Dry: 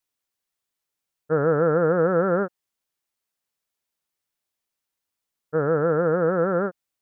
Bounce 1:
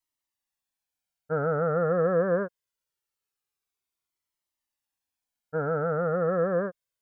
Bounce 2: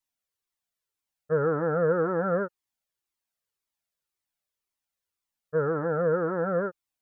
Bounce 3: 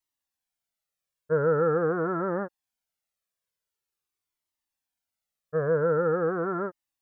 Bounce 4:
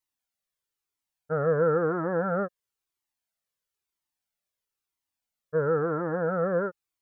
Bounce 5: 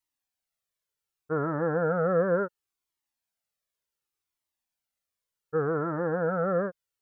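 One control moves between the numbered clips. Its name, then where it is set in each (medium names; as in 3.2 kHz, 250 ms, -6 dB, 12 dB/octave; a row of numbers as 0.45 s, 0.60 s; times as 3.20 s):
Shepard-style flanger, rate: 0.23 Hz, 1.9 Hz, 0.45 Hz, 1 Hz, 0.68 Hz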